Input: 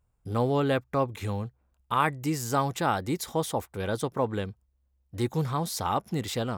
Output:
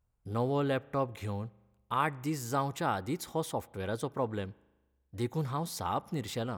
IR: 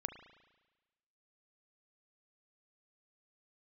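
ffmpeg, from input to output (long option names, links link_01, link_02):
-filter_complex "[0:a]asplit=2[link_01][link_02];[1:a]atrim=start_sample=2205,lowpass=3700[link_03];[link_02][link_03]afir=irnorm=-1:irlink=0,volume=-12.5dB[link_04];[link_01][link_04]amix=inputs=2:normalize=0,volume=-6.5dB"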